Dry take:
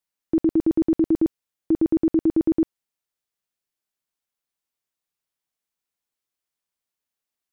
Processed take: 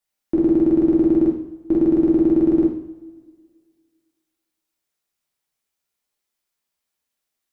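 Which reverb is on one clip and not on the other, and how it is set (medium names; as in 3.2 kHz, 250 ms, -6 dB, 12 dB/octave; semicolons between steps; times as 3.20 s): two-slope reverb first 0.58 s, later 1.9 s, from -19 dB, DRR -3 dB; trim +1 dB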